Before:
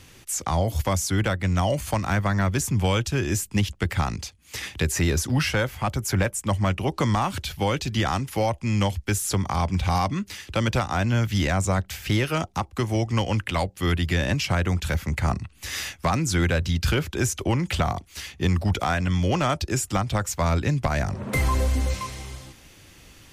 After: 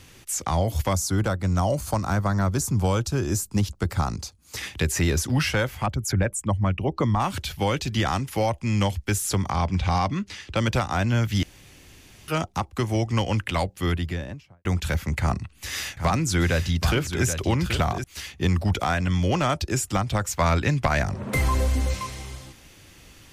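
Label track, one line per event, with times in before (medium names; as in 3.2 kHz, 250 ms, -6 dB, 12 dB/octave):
0.930000	4.570000	high-order bell 2.4 kHz -9 dB 1.2 oct
5.860000	7.200000	resonances exaggerated exponent 1.5
9.510000	10.570000	low-pass 6.3 kHz
11.430000	12.280000	room tone
13.680000	14.650000	studio fade out
15.190000	18.040000	delay 779 ms -8.5 dB
20.340000	21.030000	peaking EQ 1.9 kHz +5 dB 2.8 oct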